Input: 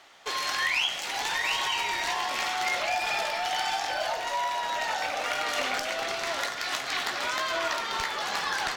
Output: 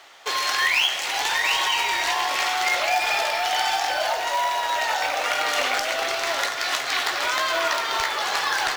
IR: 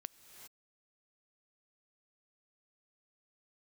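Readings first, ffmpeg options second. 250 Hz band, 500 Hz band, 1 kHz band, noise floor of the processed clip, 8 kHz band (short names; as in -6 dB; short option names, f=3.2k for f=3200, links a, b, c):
+2.0 dB, +5.5 dB, +6.0 dB, -28 dBFS, +6.5 dB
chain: -filter_complex "[0:a]asplit=2[a][b];[b]highpass=f=190:w=0.5412,highpass=f=190:w=1.3066[c];[1:a]atrim=start_sample=2205,afade=t=out:st=0.45:d=0.01,atrim=end_sample=20286[d];[c][d]afir=irnorm=-1:irlink=0,volume=5.5dB[e];[a][e]amix=inputs=2:normalize=0,acrusher=bits=5:mode=log:mix=0:aa=0.000001"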